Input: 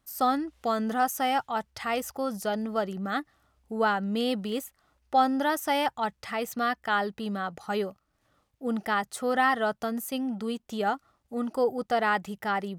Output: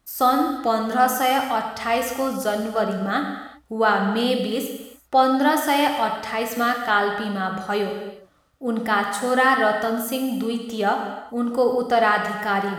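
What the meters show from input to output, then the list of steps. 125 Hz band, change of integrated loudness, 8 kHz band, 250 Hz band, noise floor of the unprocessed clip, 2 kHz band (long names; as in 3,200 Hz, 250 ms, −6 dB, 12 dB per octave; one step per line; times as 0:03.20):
+7.0 dB, +7.0 dB, +7.5 dB, +6.5 dB, −75 dBFS, +7.5 dB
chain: reverb whose tail is shaped and stops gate 410 ms falling, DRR 2.5 dB
level +5.5 dB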